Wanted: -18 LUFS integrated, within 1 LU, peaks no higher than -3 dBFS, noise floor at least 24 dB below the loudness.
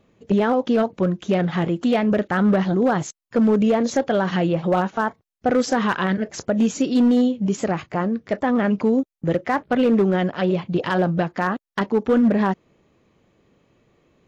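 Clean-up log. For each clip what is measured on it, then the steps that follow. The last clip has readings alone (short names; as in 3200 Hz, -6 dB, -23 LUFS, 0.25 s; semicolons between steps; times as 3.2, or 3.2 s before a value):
clipped 1.5%; flat tops at -12.0 dBFS; loudness -21.0 LUFS; peak -12.0 dBFS; loudness target -18.0 LUFS
-> clip repair -12 dBFS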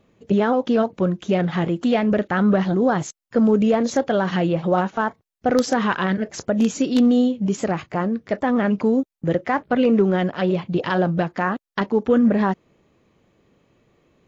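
clipped 0.0%; loudness -20.5 LUFS; peak -3.0 dBFS; loudness target -18.0 LUFS
-> gain +2.5 dB; limiter -3 dBFS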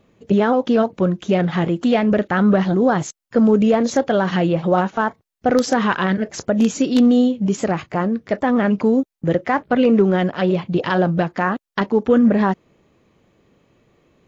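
loudness -18.0 LUFS; peak -3.0 dBFS; noise floor -69 dBFS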